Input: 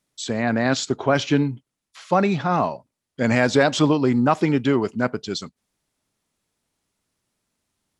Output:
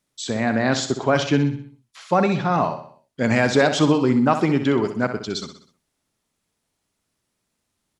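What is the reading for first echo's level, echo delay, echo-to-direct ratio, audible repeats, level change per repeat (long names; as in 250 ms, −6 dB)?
−9.5 dB, 63 ms, −8.5 dB, 4, −6.5 dB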